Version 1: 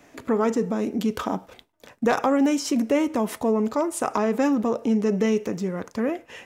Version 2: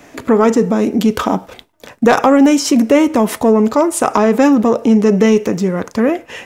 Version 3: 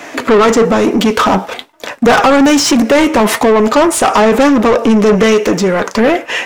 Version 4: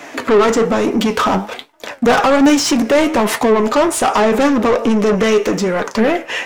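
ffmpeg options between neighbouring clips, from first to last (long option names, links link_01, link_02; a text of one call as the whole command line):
ffmpeg -i in.wav -af "acontrast=79,volume=4.5dB" out.wav
ffmpeg -i in.wav -filter_complex "[0:a]flanger=delay=2.8:depth=2.5:regen=75:speed=1.1:shape=triangular,asplit=2[link_01][link_02];[link_02]highpass=frequency=720:poles=1,volume=25dB,asoftclip=type=tanh:threshold=-2.5dB[link_03];[link_01][link_03]amix=inputs=2:normalize=0,lowpass=frequency=4500:poles=1,volume=-6dB,volume=1.5dB" out.wav
ffmpeg -i in.wav -af "flanger=delay=6.4:depth=6.3:regen=77:speed=1.2:shape=triangular" out.wav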